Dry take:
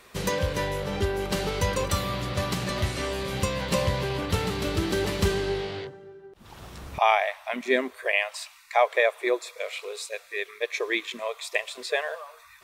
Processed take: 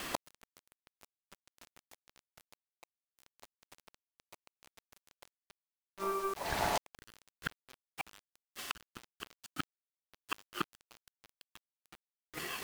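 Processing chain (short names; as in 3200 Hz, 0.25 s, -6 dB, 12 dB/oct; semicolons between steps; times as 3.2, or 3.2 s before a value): 2.54–3.16 inverse Chebyshev low-pass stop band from 1400 Hz, stop band 80 dB; compressor 12:1, threshold -27 dBFS, peak gain reduction 13 dB; ring modulator 780 Hz; flipped gate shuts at -32 dBFS, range -37 dB; bit-crush 10-bit; gain +14 dB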